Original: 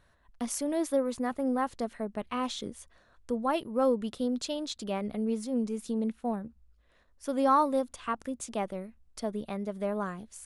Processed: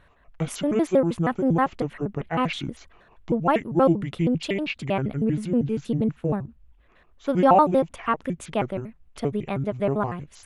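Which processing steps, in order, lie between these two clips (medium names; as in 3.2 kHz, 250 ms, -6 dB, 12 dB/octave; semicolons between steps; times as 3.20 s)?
pitch shift switched off and on -7 st, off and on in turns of 79 ms; resonant high shelf 3.8 kHz -8.5 dB, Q 1.5; trim +8 dB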